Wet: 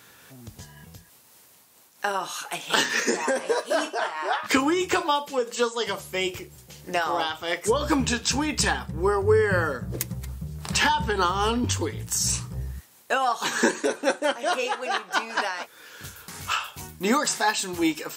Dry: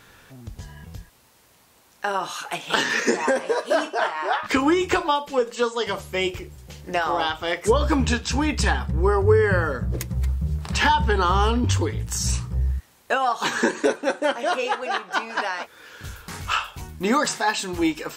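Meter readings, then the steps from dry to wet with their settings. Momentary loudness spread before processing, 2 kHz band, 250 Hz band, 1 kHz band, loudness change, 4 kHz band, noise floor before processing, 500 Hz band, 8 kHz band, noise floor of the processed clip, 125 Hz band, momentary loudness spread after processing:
15 LU, -1.5 dB, -2.5 dB, -2.5 dB, -2.0 dB, 0.0 dB, -57 dBFS, -2.5 dB, +3.0 dB, -55 dBFS, -7.0 dB, 14 LU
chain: HPF 110 Hz 12 dB/oct; high shelf 5700 Hz +9.5 dB; noise-modulated level, depth 60%

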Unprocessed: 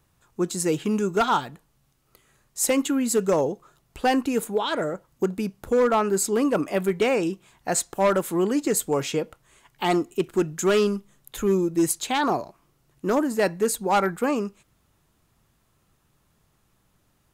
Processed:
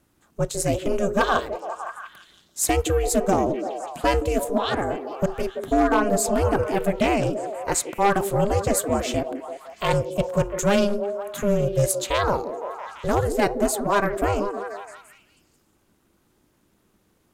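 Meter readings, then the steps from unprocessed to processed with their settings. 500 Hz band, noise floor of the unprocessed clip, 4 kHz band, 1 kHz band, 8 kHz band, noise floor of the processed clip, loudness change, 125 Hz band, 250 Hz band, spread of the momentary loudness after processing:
+1.0 dB, -67 dBFS, +0.5 dB, +2.5 dB, +0.5 dB, -65 dBFS, +0.5 dB, +6.5 dB, -1.0 dB, 11 LU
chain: ring modulator 200 Hz; delay with a stepping band-pass 0.17 s, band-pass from 350 Hz, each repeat 0.7 oct, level -4 dB; gain +3.5 dB

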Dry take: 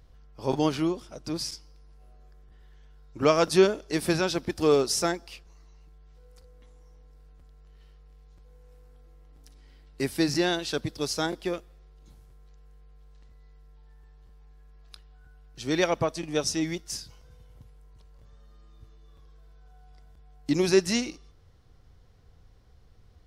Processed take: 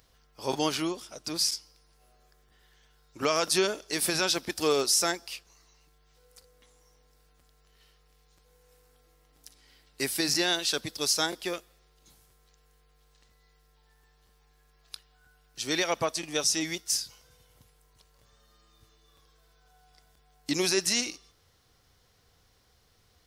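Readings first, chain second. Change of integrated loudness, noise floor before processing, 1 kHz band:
-1.0 dB, -56 dBFS, -1.5 dB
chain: tilt +3 dB/oct; limiter -14 dBFS, peak gain reduction 8.5 dB

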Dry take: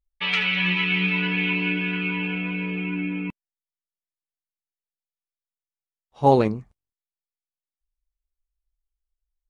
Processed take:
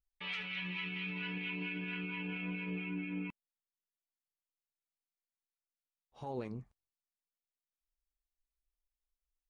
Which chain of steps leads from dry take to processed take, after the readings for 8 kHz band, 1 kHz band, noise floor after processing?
n/a, -23.0 dB, under -85 dBFS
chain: compressor, threshold -23 dBFS, peak gain reduction 11.5 dB; limiter -22.5 dBFS, peak gain reduction 10 dB; harmonic tremolo 4.4 Hz, depth 50%, crossover 830 Hz; gain -7 dB

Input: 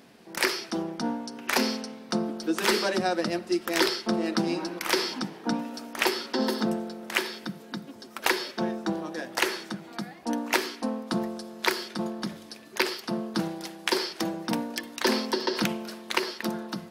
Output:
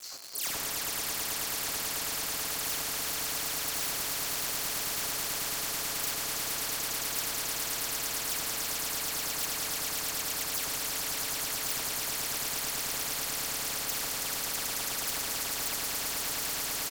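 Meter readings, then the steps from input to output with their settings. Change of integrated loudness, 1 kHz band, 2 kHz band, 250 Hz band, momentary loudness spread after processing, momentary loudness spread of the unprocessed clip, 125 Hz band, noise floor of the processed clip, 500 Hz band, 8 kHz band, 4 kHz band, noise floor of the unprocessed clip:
-1.5 dB, -7.0 dB, -6.0 dB, -18.5 dB, 1 LU, 10 LU, -8.5 dB, -35 dBFS, -13.0 dB, +8.5 dB, -1.5 dB, -48 dBFS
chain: band-swap scrambler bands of 4000 Hz; dispersion lows, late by 0.127 s, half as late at 2700 Hz; step gate "xx..xxxx" 181 bpm -12 dB; high shelf 2500 Hz -10.5 dB; comb 7.2 ms, depth 45%; on a send: swelling echo 0.109 s, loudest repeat 8, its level -6 dB; on the sum: crackle 330/s -53 dBFS; tone controls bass -9 dB, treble +8 dB; soft clip -15 dBFS, distortion -23 dB; spectral compressor 10:1

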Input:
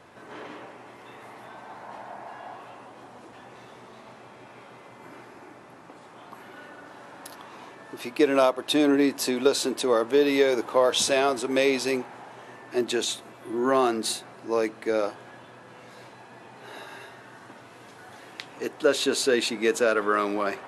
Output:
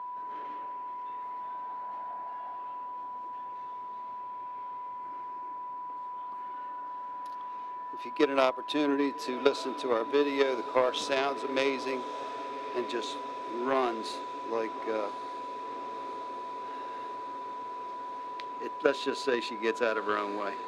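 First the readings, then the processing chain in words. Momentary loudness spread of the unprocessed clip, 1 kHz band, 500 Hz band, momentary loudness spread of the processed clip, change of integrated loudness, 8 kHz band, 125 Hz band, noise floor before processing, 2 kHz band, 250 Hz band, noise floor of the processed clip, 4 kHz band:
21 LU, +0.5 dB, -6.0 dB, 11 LU, -9.0 dB, -16.5 dB, under -10 dB, -49 dBFS, -5.5 dB, -7.5 dB, -40 dBFS, -8.5 dB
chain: added harmonics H 3 -13 dB, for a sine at -7 dBFS; low shelf 150 Hz +8.5 dB; whine 990 Hz -36 dBFS; three-band isolator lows -14 dB, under 220 Hz, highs -15 dB, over 5400 Hz; on a send: diffused feedback echo 1.169 s, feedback 76%, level -15.5 dB

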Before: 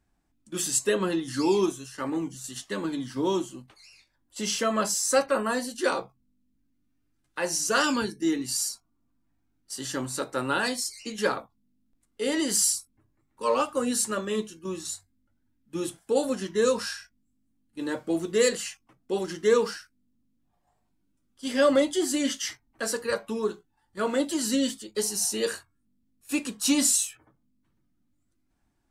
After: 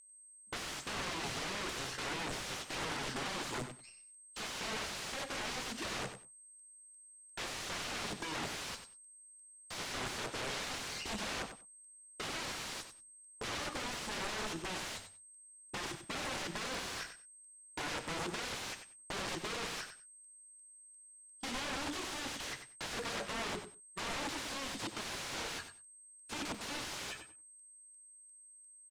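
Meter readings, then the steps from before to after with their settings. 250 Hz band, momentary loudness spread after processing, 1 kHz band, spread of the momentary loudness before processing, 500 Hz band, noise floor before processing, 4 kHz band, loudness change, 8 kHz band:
-17.5 dB, 17 LU, -9.0 dB, 13 LU, -18.5 dB, -73 dBFS, -6.0 dB, -12.5 dB, -14.5 dB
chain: expander -45 dBFS; reverse; compressor 16:1, threshold -33 dBFS, peak gain reduction 17.5 dB; reverse; sample leveller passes 2; whine 8300 Hz -50 dBFS; wrapped overs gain 33.5 dB; air absorption 83 m; on a send: feedback echo 94 ms, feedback 17%, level -9.5 dB; on the sum: crackling interface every 0.35 s, samples 128, repeat, from 0.64; gain +2 dB

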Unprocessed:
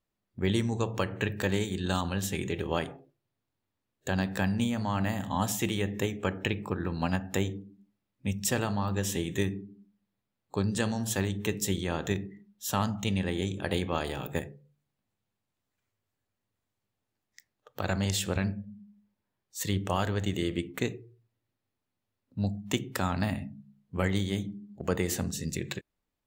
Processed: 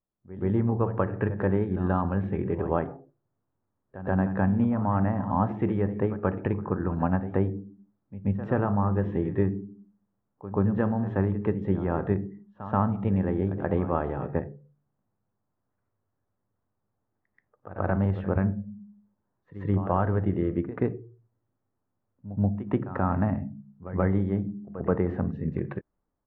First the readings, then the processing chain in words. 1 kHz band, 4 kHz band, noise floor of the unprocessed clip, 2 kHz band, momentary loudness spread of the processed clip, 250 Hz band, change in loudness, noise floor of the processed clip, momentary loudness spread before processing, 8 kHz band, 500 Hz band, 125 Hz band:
+4.0 dB, under -25 dB, -85 dBFS, -4.0 dB, 12 LU, +5.0 dB, +3.5 dB, -80 dBFS, 9 LU, under -40 dB, +4.5 dB, +5.0 dB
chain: LPF 1400 Hz 24 dB/oct; AGC gain up to 11 dB; reverse echo 0.131 s -14 dB; gain -6 dB

